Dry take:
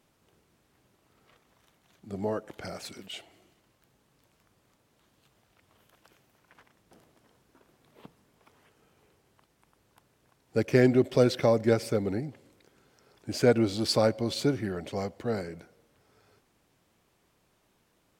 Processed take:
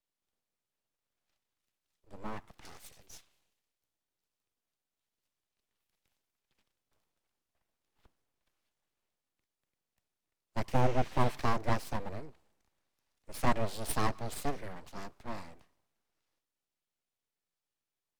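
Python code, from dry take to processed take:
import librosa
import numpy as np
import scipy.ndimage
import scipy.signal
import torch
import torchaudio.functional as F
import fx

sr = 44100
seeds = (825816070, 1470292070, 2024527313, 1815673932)

y = fx.spec_repair(x, sr, seeds[0], start_s=10.72, length_s=0.61, low_hz=820.0, high_hz=7900.0, source='both')
y = np.abs(y)
y = fx.band_widen(y, sr, depth_pct=40)
y = y * 10.0 ** (-7.0 / 20.0)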